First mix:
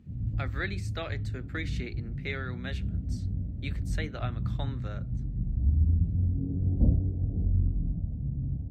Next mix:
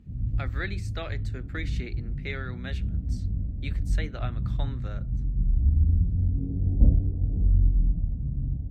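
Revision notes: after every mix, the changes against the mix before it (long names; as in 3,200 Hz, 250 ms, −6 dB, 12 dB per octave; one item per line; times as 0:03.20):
master: remove high-pass filter 69 Hz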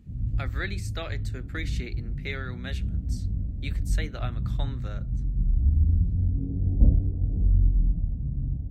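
master: add high-shelf EQ 6,300 Hz +11 dB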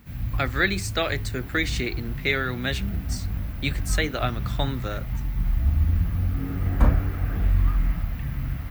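speech +11.0 dB
background: remove Gaussian smoothing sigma 20 samples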